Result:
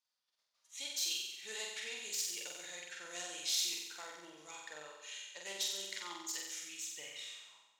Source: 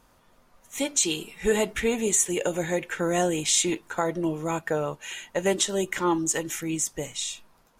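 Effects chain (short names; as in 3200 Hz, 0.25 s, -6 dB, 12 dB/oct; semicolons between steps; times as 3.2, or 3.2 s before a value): self-modulated delay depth 0.062 ms; gate -57 dBFS, range -13 dB; band-pass sweep 4600 Hz -> 1000 Hz, 6.74–7.56; flutter echo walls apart 7.9 m, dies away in 1 s; gain -3.5 dB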